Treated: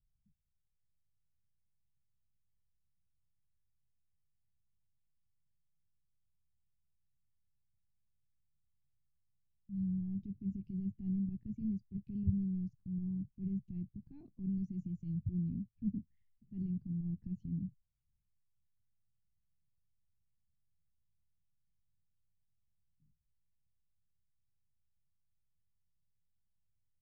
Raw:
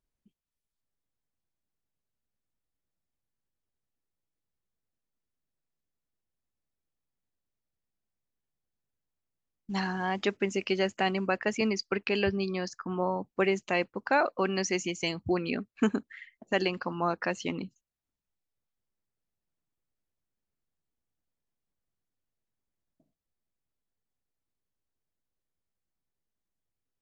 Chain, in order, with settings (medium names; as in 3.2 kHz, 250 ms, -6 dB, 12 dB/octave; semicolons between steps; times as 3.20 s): transient shaper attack -10 dB, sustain +3 dB; inverse Chebyshev low-pass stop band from 510 Hz, stop band 60 dB; tape noise reduction on one side only encoder only; trim +8.5 dB